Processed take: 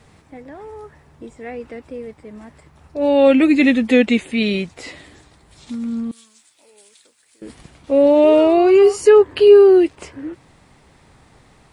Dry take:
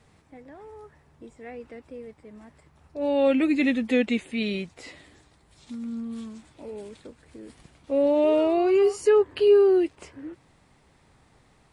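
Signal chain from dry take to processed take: 6.11–7.42 differentiator; gain +9 dB

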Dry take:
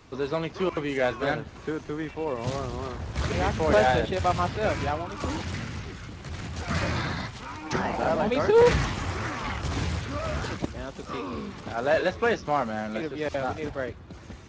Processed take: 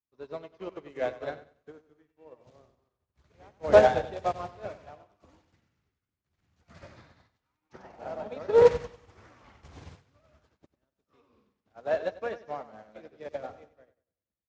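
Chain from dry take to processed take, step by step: random-step tremolo 1.1 Hz; dynamic EQ 570 Hz, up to +7 dB, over -41 dBFS, Q 1.2; on a send: feedback echo 95 ms, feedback 58%, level -7 dB; on the sum: upward expander 2.5:1, over -43 dBFS

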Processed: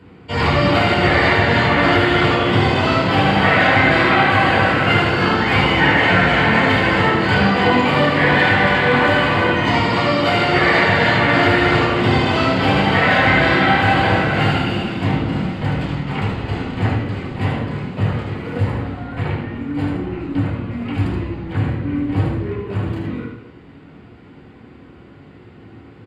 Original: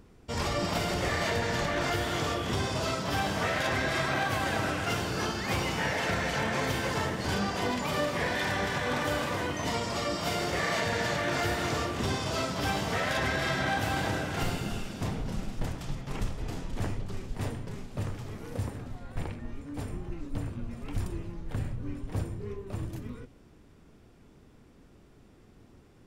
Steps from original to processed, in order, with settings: tone controls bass -3 dB, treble -3 dB; echo 76 ms -6 dB; reverb RT60 0.85 s, pre-delay 3 ms, DRR -6 dB; gain -1 dB

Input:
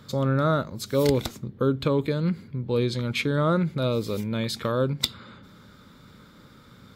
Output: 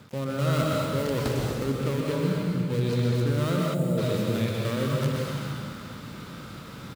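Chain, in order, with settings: switching dead time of 0.21 ms; HPF 56 Hz; reverse; compressor 6:1, threshold -34 dBFS, peak gain reduction 16.5 dB; reverse; plate-style reverb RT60 2 s, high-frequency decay 0.9×, pre-delay 0.11 s, DRR -2.5 dB; spectral delete 3.74–3.98, 900–6700 Hz; on a send: echo 0.233 s -11.5 dB; on the sum: gain +6.5 dB

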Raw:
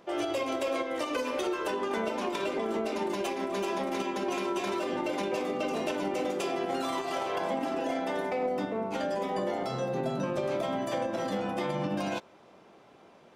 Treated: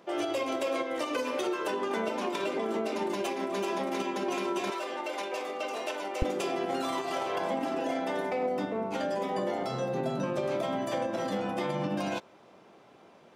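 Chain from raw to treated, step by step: HPF 120 Hz 12 dB/oct, from 4.7 s 540 Hz, from 6.22 s 67 Hz

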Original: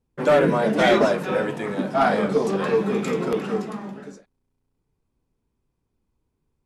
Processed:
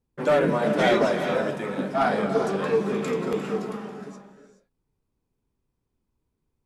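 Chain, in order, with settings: non-linear reverb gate 0.45 s rising, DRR 8 dB; gain -3.5 dB

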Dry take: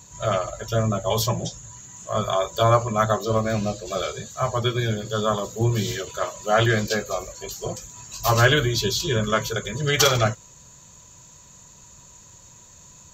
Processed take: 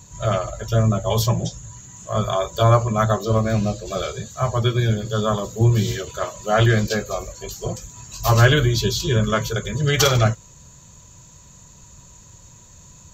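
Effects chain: low shelf 200 Hz +8.5 dB

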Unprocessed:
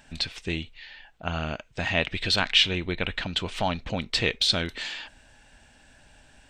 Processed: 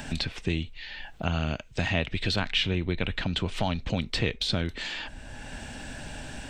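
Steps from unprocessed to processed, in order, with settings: low shelf 380 Hz +9 dB; three-band squash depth 70%; gain -4.5 dB

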